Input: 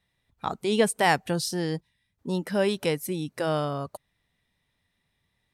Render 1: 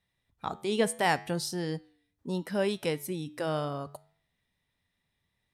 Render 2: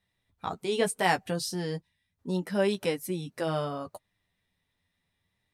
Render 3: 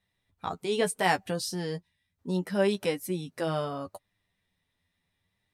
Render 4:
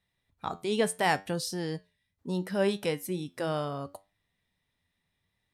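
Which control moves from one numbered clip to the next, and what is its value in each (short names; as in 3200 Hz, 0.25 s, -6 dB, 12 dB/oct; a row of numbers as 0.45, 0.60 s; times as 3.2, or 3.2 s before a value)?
flange, regen: -88, -20, +19, +77%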